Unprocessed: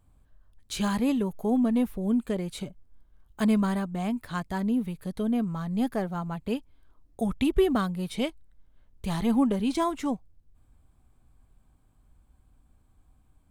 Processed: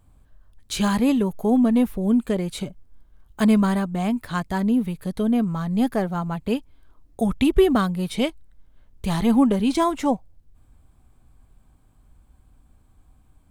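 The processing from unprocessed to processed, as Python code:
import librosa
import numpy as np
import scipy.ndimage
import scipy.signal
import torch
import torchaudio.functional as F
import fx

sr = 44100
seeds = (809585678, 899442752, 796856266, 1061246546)

y = fx.spec_box(x, sr, start_s=9.98, length_s=0.38, low_hz=490.0, high_hz=1000.0, gain_db=6)
y = y * 10.0 ** (6.0 / 20.0)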